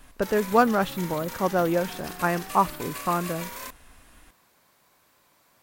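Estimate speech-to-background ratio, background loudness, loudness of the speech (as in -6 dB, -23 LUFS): 11.5 dB, -37.0 LUFS, -25.5 LUFS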